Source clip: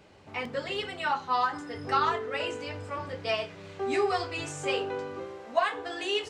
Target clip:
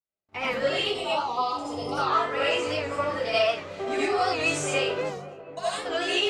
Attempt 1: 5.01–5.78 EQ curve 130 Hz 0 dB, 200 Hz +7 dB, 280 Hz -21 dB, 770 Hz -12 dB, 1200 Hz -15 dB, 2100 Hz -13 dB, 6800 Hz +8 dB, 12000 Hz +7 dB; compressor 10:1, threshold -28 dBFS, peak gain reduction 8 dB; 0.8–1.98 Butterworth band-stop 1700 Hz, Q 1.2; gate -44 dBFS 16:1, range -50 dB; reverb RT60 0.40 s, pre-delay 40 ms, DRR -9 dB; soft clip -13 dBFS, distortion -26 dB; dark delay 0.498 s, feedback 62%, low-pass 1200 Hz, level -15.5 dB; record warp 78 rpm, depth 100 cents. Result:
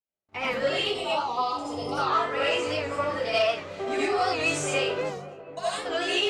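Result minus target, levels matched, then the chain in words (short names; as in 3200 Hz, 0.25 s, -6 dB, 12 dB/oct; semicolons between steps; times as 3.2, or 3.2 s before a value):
soft clip: distortion +12 dB
5.01–5.78 EQ curve 130 Hz 0 dB, 200 Hz +7 dB, 280 Hz -21 dB, 770 Hz -12 dB, 1200 Hz -15 dB, 2100 Hz -13 dB, 6800 Hz +8 dB, 12000 Hz +7 dB; compressor 10:1, threshold -28 dBFS, peak gain reduction 8 dB; 0.8–1.98 Butterworth band-stop 1700 Hz, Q 1.2; gate -44 dBFS 16:1, range -50 dB; reverb RT60 0.40 s, pre-delay 40 ms, DRR -9 dB; soft clip -6.5 dBFS, distortion -38 dB; dark delay 0.498 s, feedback 62%, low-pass 1200 Hz, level -15.5 dB; record warp 78 rpm, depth 100 cents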